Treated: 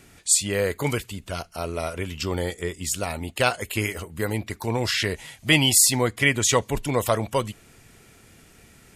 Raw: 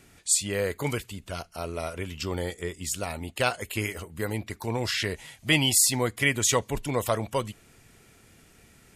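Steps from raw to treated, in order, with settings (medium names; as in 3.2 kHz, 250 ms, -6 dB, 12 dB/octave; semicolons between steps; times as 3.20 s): 6.01–6.56 s: treble shelf 11 kHz -9 dB; trim +4 dB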